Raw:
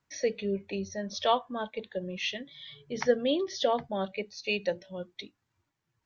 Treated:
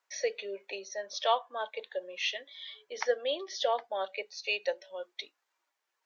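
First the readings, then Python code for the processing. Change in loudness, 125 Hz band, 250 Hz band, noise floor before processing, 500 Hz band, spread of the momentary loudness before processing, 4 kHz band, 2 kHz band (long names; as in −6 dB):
−2.5 dB, below −30 dB, −18.5 dB, −82 dBFS, −3.0 dB, 14 LU, 0.0 dB, +0.5 dB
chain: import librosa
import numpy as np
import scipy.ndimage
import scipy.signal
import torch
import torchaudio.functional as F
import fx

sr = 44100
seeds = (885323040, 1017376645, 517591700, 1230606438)

p1 = scipy.signal.sosfilt(scipy.signal.butter(4, 500.0, 'highpass', fs=sr, output='sos'), x)
p2 = fx.rider(p1, sr, range_db=4, speed_s=0.5)
p3 = p1 + (p2 * 10.0 ** (-2.0 / 20.0))
y = p3 * 10.0 ** (-5.0 / 20.0)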